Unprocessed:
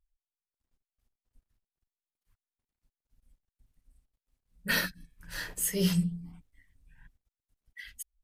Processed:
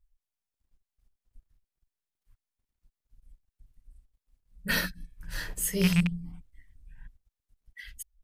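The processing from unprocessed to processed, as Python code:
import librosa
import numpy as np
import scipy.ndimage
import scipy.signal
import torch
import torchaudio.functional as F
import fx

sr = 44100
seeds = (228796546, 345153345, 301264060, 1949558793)

y = fx.rattle_buzz(x, sr, strikes_db=-27.0, level_db=-19.0)
y = fx.low_shelf(y, sr, hz=100.0, db=11.0)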